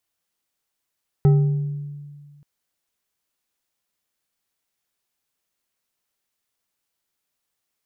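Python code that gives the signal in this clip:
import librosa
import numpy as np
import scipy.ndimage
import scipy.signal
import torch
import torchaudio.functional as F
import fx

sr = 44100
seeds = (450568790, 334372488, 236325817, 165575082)

y = fx.strike_glass(sr, length_s=1.18, level_db=-10.0, body='bar', hz=145.0, decay_s=1.85, tilt_db=10, modes=5)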